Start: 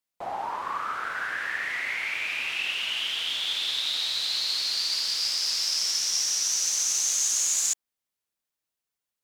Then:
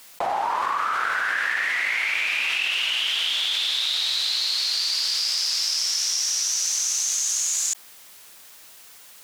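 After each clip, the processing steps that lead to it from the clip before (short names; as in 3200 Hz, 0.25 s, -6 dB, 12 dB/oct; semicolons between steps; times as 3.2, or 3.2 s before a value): low shelf 420 Hz -9 dB; fast leveller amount 100%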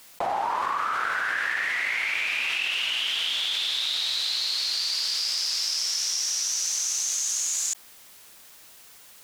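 low shelf 400 Hz +4.5 dB; gain -3 dB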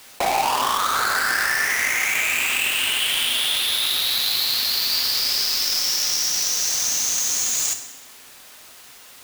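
half-waves squared off; reverb RT60 1.1 s, pre-delay 4 ms, DRR 5.5 dB; gain +1.5 dB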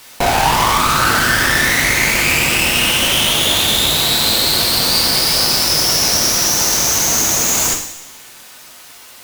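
added harmonics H 6 -12 dB, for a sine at -10.5 dBFS; two-slope reverb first 0.6 s, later 1.8 s, from -17 dB, DRR 2 dB; gain +4 dB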